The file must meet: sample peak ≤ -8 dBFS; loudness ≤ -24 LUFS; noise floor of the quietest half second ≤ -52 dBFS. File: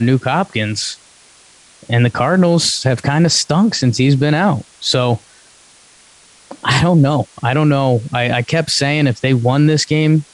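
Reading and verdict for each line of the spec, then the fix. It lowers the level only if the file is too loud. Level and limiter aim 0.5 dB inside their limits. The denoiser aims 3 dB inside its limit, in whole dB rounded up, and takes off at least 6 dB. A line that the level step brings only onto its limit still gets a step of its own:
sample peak -3.0 dBFS: fail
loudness -14.5 LUFS: fail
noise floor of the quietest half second -47 dBFS: fail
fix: trim -10 dB

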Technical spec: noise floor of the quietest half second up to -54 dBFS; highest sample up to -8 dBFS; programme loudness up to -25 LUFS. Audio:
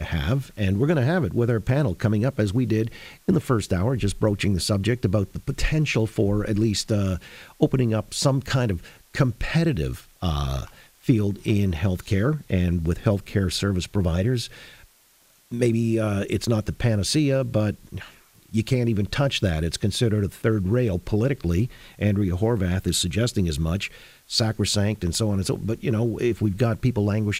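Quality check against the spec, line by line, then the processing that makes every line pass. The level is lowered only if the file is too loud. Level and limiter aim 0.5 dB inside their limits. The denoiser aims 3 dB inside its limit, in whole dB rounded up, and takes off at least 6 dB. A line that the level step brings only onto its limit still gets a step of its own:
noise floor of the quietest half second -58 dBFS: pass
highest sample -4.5 dBFS: fail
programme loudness -24.0 LUFS: fail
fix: trim -1.5 dB; peak limiter -8.5 dBFS

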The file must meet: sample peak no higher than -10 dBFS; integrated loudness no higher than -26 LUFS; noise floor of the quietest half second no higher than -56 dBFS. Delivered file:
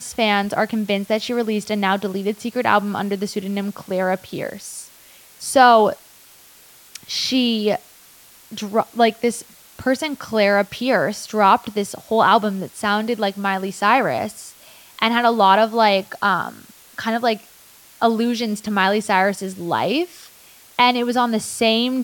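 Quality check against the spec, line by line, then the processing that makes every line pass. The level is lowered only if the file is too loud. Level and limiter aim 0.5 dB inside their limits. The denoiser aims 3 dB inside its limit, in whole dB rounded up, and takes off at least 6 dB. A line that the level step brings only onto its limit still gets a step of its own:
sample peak -1.5 dBFS: fail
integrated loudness -19.5 LUFS: fail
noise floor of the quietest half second -48 dBFS: fail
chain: noise reduction 6 dB, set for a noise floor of -48 dBFS; trim -7 dB; peak limiter -10.5 dBFS

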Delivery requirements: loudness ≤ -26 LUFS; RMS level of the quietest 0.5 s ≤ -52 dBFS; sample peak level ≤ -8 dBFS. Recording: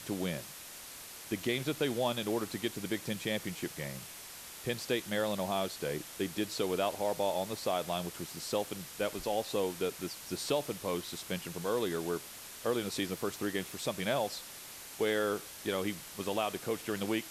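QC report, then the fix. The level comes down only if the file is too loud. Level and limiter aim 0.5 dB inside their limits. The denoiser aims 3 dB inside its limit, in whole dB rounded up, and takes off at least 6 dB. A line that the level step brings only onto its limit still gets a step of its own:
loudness -35.5 LUFS: pass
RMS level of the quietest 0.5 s -48 dBFS: fail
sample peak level -17.0 dBFS: pass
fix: noise reduction 7 dB, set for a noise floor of -48 dBFS

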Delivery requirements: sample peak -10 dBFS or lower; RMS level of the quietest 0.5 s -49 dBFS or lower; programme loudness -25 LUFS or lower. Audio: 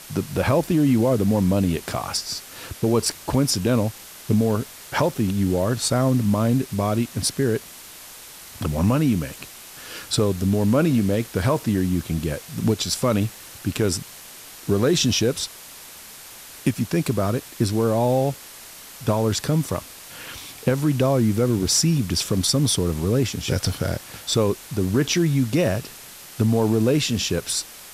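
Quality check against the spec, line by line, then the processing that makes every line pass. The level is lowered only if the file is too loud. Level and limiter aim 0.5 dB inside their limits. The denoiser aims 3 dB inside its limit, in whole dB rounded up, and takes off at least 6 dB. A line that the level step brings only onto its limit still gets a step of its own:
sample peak -7.5 dBFS: fail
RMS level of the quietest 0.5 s -42 dBFS: fail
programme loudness -22.0 LUFS: fail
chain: noise reduction 7 dB, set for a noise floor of -42 dBFS; trim -3.5 dB

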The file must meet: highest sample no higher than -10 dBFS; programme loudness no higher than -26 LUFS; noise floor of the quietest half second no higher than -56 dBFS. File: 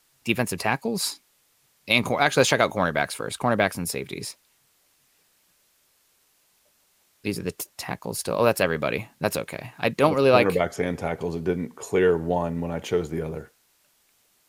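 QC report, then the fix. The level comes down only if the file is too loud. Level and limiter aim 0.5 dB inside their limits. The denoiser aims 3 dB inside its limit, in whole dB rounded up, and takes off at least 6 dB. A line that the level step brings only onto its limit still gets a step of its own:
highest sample -5.0 dBFS: fail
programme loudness -24.5 LUFS: fail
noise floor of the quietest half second -65 dBFS: pass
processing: trim -2 dB; peak limiter -10.5 dBFS

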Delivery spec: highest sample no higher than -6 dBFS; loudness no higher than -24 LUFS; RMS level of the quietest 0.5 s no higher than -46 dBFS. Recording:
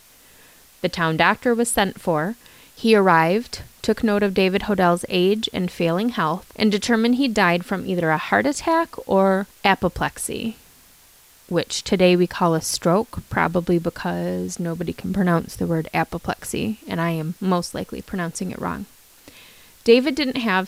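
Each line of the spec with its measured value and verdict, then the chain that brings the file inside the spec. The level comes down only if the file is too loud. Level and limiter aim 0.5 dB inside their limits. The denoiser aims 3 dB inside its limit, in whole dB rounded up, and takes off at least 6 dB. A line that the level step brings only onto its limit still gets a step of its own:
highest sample -3.5 dBFS: fail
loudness -21.0 LUFS: fail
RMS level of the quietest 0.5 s -51 dBFS: pass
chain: trim -3.5 dB

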